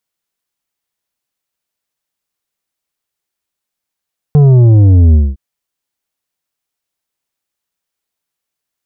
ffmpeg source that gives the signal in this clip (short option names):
-f lavfi -i "aevalsrc='0.631*clip((1.01-t)/0.22,0,1)*tanh(2.51*sin(2*PI*150*1.01/log(65/150)*(exp(log(65/150)*t/1.01)-1)))/tanh(2.51)':d=1.01:s=44100"